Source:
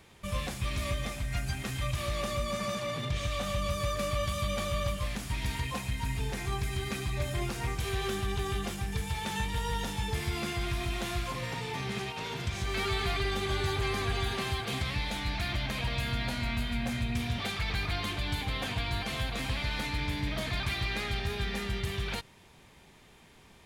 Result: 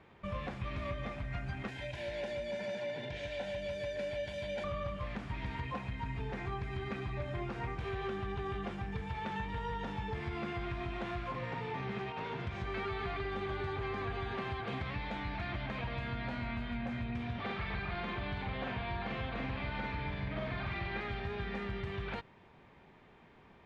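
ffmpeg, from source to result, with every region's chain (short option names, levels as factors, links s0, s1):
-filter_complex "[0:a]asettb=1/sr,asplit=3[s0][s1][s2];[s0]atrim=end=1.684[s3];[s1]atrim=start=1.68:end=4.64,asetpts=PTS-STARTPTS,afade=t=in:d=0.004:c=qsin,afade=t=out:st=2.956:d=0.004:c=qsin,asuperstop=centerf=1200:order=8:qfactor=3.9,bass=f=250:g=-10,treble=f=4000:g=6[s4];[s2]atrim=start=4.636[s5];[s3][s4]acrossfade=d=0.004:c1=hsin:c2=qsin[s6];[s6][s5]acrossfade=d=0.004:c1=qsin:c2=hsin,asettb=1/sr,asplit=3[s7][s8][s9];[s7]atrim=end=17.424[s10];[s8]atrim=start=17.42:end=21.01,asetpts=PTS-STARTPTS,afade=t=in:d=0.004:c=qsin,afade=t=out:st=3.586:d=0.004:c=qsin,lowpass=5300,asplit=2[s11][s12];[s12]adelay=46,volume=0.794[s13];[s11][s13]amix=inputs=2:normalize=0,atrim=end_sample=158319[s14];[s9]atrim=start=21.006[s15];[s10][s14]acrossfade=d=0.004:c1=hsin:c2=qsin[s16];[s16][s15]acrossfade=d=0.004:c1=qsin:c2=hsin,lowpass=1900,lowshelf=f=95:g=-8,acompressor=threshold=0.02:ratio=6"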